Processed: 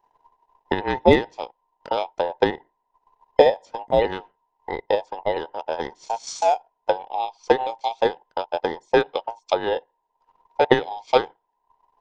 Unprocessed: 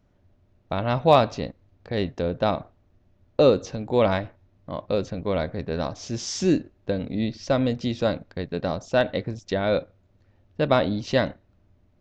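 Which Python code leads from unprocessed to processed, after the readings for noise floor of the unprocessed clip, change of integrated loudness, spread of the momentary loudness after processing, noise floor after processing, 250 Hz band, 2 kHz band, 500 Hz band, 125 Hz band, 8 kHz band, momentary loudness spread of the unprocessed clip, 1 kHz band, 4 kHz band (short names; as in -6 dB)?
-63 dBFS, +1.5 dB, 14 LU, -75 dBFS, -3.5 dB, +3.0 dB, +2.0 dB, -8.5 dB, n/a, 12 LU, +5.0 dB, +1.0 dB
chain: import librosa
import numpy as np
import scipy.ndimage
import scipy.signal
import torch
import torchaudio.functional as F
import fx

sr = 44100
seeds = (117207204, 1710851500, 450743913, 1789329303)

y = fx.band_invert(x, sr, width_hz=1000)
y = fx.transient(y, sr, attack_db=11, sustain_db=-10)
y = y * librosa.db_to_amplitude(-4.0)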